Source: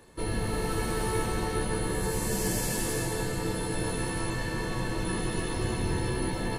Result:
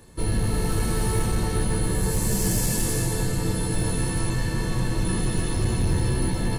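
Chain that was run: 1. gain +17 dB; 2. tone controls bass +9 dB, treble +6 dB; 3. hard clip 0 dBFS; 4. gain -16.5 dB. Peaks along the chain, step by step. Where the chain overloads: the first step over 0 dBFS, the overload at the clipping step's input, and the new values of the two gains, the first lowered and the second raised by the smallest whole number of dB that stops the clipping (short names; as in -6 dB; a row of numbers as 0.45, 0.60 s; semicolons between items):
+0.5, +6.5, 0.0, -16.5 dBFS; step 1, 6.5 dB; step 1 +10 dB, step 4 -9.5 dB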